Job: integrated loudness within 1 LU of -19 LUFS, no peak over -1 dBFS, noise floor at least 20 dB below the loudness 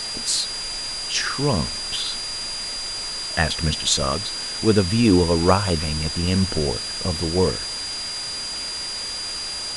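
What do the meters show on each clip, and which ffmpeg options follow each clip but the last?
steady tone 4800 Hz; tone level -28 dBFS; noise floor -30 dBFS; noise floor target -42 dBFS; loudness -22.0 LUFS; peak -2.5 dBFS; loudness target -19.0 LUFS
-> -af "bandreject=f=4.8k:w=30"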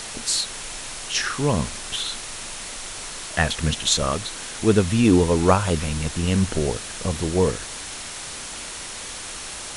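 steady tone none; noise floor -35 dBFS; noise floor target -44 dBFS
-> -af "afftdn=nr=9:nf=-35"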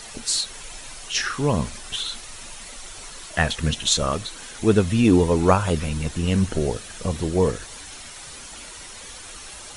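noise floor -40 dBFS; noise floor target -43 dBFS
-> -af "afftdn=nr=6:nf=-40"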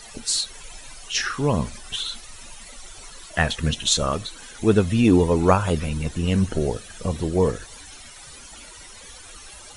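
noise floor -43 dBFS; loudness -22.5 LUFS; peak -3.0 dBFS; loudness target -19.0 LUFS
-> -af "volume=3.5dB,alimiter=limit=-1dB:level=0:latency=1"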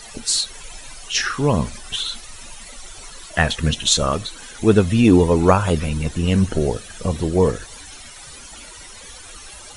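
loudness -19.0 LUFS; peak -1.0 dBFS; noise floor -40 dBFS

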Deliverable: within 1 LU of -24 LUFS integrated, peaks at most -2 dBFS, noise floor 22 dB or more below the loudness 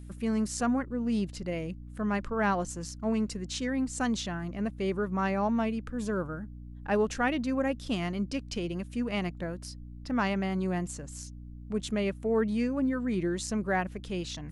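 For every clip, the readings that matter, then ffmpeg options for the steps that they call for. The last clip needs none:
hum 60 Hz; harmonics up to 300 Hz; hum level -42 dBFS; loudness -31.0 LUFS; peak -16.0 dBFS; loudness target -24.0 LUFS
-> -af "bandreject=f=60:t=h:w=6,bandreject=f=120:t=h:w=6,bandreject=f=180:t=h:w=6,bandreject=f=240:t=h:w=6,bandreject=f=300:t=h:w=6"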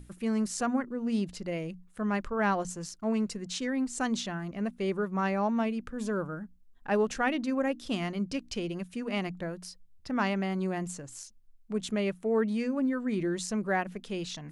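hum none; loudness -31.5 LUFS; peak -15.5 dBFS; loudness target -24.0 LUFS
-> -af "volume=7.5dB"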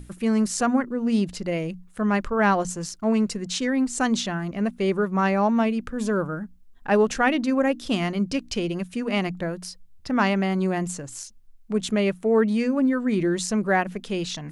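loudness -24.0 LUFS; peak -8.0 dBFS; noise floor -50 dBFS

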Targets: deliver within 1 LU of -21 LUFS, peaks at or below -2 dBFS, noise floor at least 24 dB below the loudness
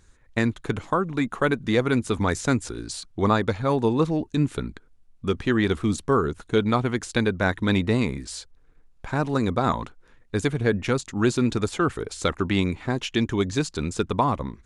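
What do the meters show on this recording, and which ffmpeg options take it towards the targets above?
loudness -25.0 LUFS; peak -7.0 dBFS; loudness target -21.0 LUFS
-> -af "volume=4dB"

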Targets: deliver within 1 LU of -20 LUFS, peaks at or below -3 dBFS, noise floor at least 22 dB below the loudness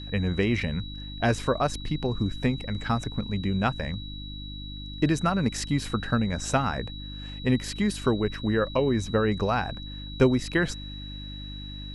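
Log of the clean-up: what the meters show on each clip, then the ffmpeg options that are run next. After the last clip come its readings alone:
hum 50 Hz; harmonics up to 300 Hz; hum level -36 dBFS; steady tone 3900 Hz; tone level -41 dBFS; loudness -27.0 LUFS; peak -8.5 dBFS; loudness target -20.0 LUFS
-> -af "bandreject=f=50:t=h:w=4,bandreject=f=100:t=h:w=4,bandreject=f=150:t=h:w=4,bandreject=f=200:t=h:w=4,bandreject=f=250:t=h:w=4,bandreject=f=300:t=h:w=4"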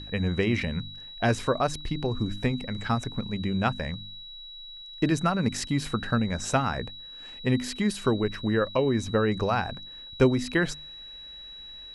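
hum none; steady tone 3900 Hz; tone level -41 dBFS
-> -af "bandreject=f=3.9k:w=30"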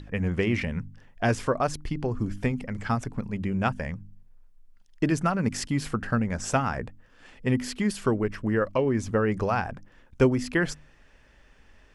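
steady tone none; loudness -27.5 LUFS; peak -8.5 dBFS; loudness target -20.0 LUFS
-> -af "volume=7.5dB,alimiter=limit=-3dB:level=0:latency=1"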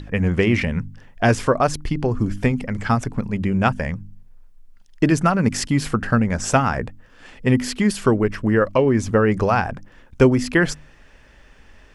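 loudness -20.0 LUFS; peak -3.0 dBFS; noise floor -49 dBFS

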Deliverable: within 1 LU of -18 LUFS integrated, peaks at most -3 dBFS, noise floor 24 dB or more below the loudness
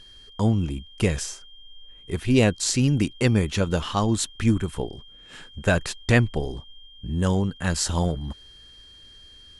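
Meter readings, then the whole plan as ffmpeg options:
steady tone 3200 Hz; tone level -47 dBFS; loudness -24.0 LUFS; peak -4.5 dBFS; loudness target -18.0 LUFS
-> -af "bandreject=f=3.2k:w=30"
-af "volume=6dB,alimiter=limit=-3dB:level=0:latency=1"

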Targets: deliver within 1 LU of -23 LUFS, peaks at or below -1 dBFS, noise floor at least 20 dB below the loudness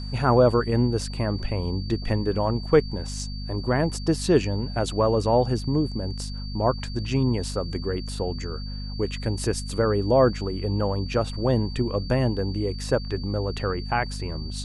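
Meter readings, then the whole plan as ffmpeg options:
hum 50 Hz; harmonics up to 250 Hz; hum level -30 dBFS; steady tone 4600 Hz; tone level -40 dBFS; loudness -25.0 LUFS; peak -5.5 dBFS; loudness target -23.0 LUFS
-> -af "bandreject=f=50:t=h:w=4,bandreject=f=100:t=h:w=4,bandreject=f=150:t=h:w=4,bandreject=f=200:t=h:w=4,bandreject=f=250:t=h:w=4"
-af "bandreject=f=4.6k:w=30"
-af "volume=2dB"

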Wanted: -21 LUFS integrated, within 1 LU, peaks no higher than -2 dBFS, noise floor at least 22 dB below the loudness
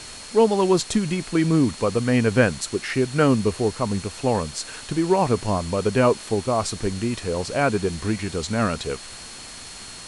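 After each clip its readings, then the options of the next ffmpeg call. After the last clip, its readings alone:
steady tone 4300 Hz; tone level -43 dBFS; noise floor -39 dBFS; noise floor target -45 dBFS; loudness -22.5 LUFS; peak -4.0 dBFS; loudness target -21.0 LUFS
-> -af "bandreject=f=4.3k:w=30"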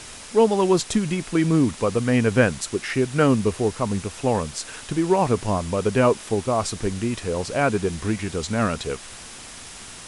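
steady tone none; noise floor -40 dBFS; noise floor target -45 dBFS
-> -af "afftdn=nr=6:nf=-40"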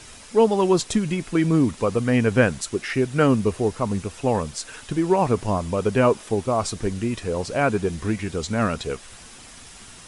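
noise floor -44 dBFS; noise floor target -45 dBFS
-> -af "afftdn=nr=6:nf=-44"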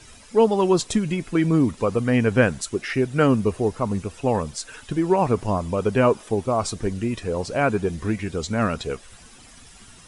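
noise floor -48 dBFS; loudness -22.5 LUFS; peak -4.0 dBFS; loudness target -21.0 LUFS
-> -af "volume=1.5dB"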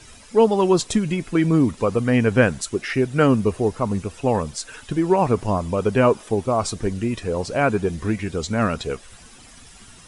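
loudness -21.0 LUFS; peak -2.5 dBFS; noise floor -46 dBFS

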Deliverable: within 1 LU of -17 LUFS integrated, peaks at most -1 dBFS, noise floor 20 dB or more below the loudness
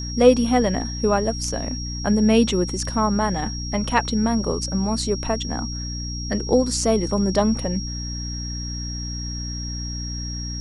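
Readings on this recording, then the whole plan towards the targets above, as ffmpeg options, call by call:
hum 60 Hz; harmonics up to 300 Hz; hum level -28 dBFS; steady tone 5600 Hz; tone level -32 dBFS; loudness -22.5 LUFS; peak -1.5 dBFS; loudness target -17.0 LUFS
-> -af "bandreject=f=60:t=h:w=6,bandreject=f=120:t=h:w=6,bandreject=f=180:t=h:w=6,bandreject=f=240:t=h:w=6,bandreject=f=300:t=h:w=6"
-af "bandreject=f=5.6k:w=30"
-af "volume=5.5dB,alimiter=limit=-1dB:level=0:latency=1"

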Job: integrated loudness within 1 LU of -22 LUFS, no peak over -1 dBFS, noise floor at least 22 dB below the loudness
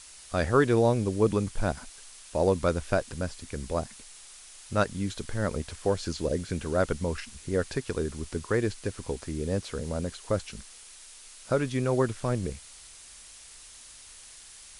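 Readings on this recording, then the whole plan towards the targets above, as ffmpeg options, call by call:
noise floor -49 dBFS; noise floor target -52 dBFS; loudness -29.5 LUFS; peak -9.5 dBFS; loudness target -22.0 LUFS
-> -af "afftdn=nr=6:nf=-49"
-af "volume=7.5dB"

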